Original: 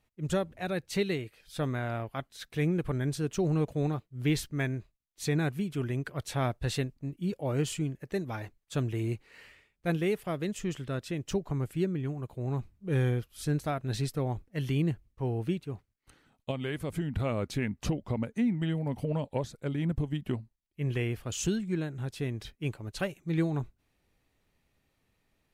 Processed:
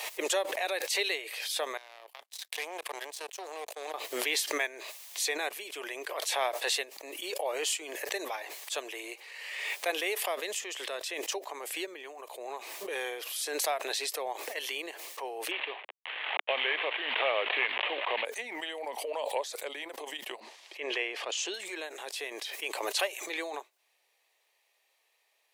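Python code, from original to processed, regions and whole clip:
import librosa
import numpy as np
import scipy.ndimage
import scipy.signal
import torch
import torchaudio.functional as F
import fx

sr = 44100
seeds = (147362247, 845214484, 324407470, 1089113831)

y = fx.chain(x, sr, fx.high_shelf(hz=2000.0, db=7.0),
    fx.level_steps(step_db=10),
    fx.power_curve(exponent=2.0), at=(1.77, 3.94))
y = fx.chain(y, sr, fx.cvsd(bps=16000),
    fx.high_shelf(hz=2500.0, db=10.5),
    fx.env_flatten(amount_pct=50), at=(15.51, 18.25))
y = fx.chain(y, sr, fx.lowpass(hz=4500.0, slope=12),
    fx.low_shelf(hz=190.0, db=11.0), at=(20.4, 21.54))
y = scipy.signal.sosfilt(scipy.signal.bessel(8, 820.0, 'highpass', norm='mag', fs=sr, output='sos'), y)
y = fx.peak_eq(y, sr, hz=1400.0, db=-11.0, octaves=0.36)
y = fx.pre_swell(y, sr, db_per_s=34.0)
y = y * 10.0 ** (7.5 / 20.0)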